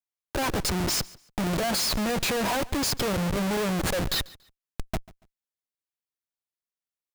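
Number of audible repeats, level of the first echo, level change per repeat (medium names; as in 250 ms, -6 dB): 2, -22.0 dB, -12.0 dB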